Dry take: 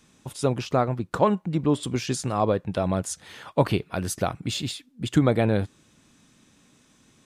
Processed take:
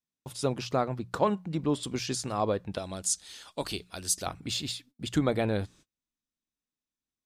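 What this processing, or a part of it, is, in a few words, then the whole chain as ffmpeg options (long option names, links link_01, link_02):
presence and air boost: -filter_complex "[0:a]equalizer=frequency=4700:width_type=o:width=0.83:gain=5,highshelf=frequency=11000:gain=4.5,bandreject=frequency=60:width_type=h:width=6,bandreject=frequency=120:width_type=h:width=6,bandreject=frequency=180:width_type=h:width=6,asubboost=boost=5.5:cutoff=50,agate=range=-33dB:threshold=-48dB:ratio=16:detection=peak,asettb=1/sr,asplit=3[link_01][link_02][link_03];[link_01]atrim=end=2.784[link_04];[link_02]atrim=start=2.78:end=4.26,asetpts=PTS-STARTPTS,afade=type=in:duration=0.004:curve=qsin,afade=type=out:start_time=1.476:duration=0.004:curve=qsin,equalizer=frequency=125:width_type=o:width=1:gain=-12,equalizer=frequency=250:width_type=o:width=1:gain=-3,equalizer=frequency=500:width_type=o:width=1:gain=-6,equalizer=frequency=1000:width_type=o:width=1:gain=-6,equalizer=frequency=2000:width_type=o:width=1:gain=-5,equalizer=frequency=4000:width_type=o:width=1:gain=3,equalizer=frequency=8000:width_type=o:width=1:gain=8[link_05];[link_03]atrim=start=4.256[link_06];[link_04][link_05]acrossfade=duration=0.004:curve1=hsin:curve2=qsin[link_07];[link_07][link_06]acrossfade=duration=0.004:curve1=qsin:curve2=hsin,volume=-5dB"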